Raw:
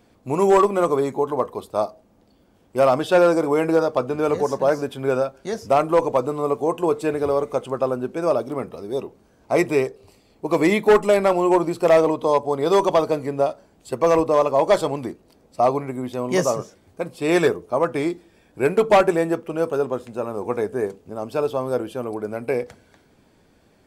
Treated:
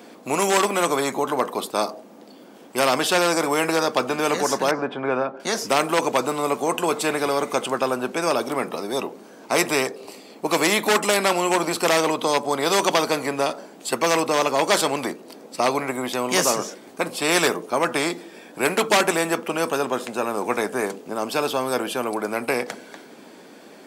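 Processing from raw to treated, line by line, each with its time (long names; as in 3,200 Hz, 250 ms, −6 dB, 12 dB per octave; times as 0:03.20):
0:04.71–0:05.40: low-pass filter 1,500 Hz
whole clip: high-pass filter 220 Hz 24 dB per octave; every bin compressed towards the loudest bin 2 to 1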